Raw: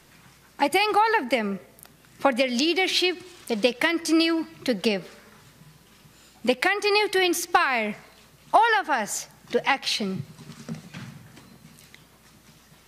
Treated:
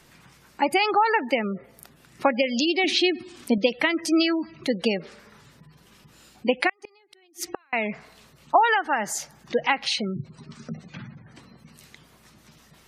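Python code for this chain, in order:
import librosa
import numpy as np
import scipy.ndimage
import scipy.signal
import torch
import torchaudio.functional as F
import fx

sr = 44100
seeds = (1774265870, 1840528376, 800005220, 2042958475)

y = fx.spec_gate(x, sr, threshold_db=-25, keep='strong')
y = fx.peak_eq(y, sr, hz=260.0, db=14.5, octaves=0.43, at=(2.84, 3.58))
y = fx.gate_flip(y, sr, shuts_db=-15.0, range_db=-38, at=(6.69, 7.73))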